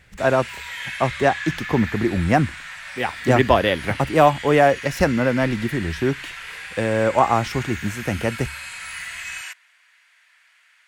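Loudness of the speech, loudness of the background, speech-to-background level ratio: -20.5 LUFS, -32.0 LUFS, 11.5 dB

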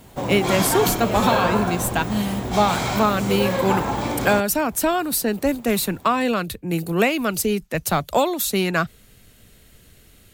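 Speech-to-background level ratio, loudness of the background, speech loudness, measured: 2.0 dB, -24.0 LUFS, -22.0 LUFS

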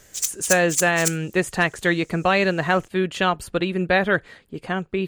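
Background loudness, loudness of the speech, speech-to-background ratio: -24.5 LUFS, -21.5 LUFS, 3.0 dB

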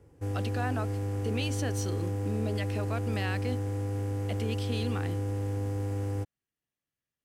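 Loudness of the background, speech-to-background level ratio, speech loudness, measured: -33.0 LUFS, -4.5 dB, -37.5 LUFS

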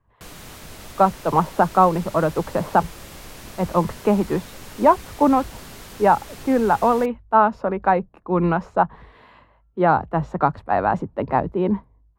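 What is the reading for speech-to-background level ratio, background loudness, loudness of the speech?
19.0 dB, -39.5 LUFS, -20.5 LUFS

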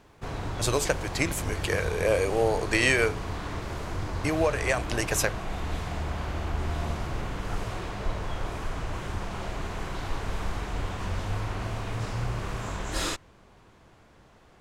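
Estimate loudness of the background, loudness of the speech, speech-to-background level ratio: -34.0 LUFS, -27.0 LUFS, 7.0 dB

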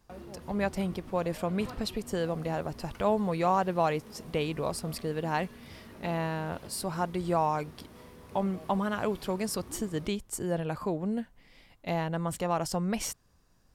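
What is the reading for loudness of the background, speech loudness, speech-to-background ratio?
-49.0 LUFS, -32.0 LUFS, 17.0 dB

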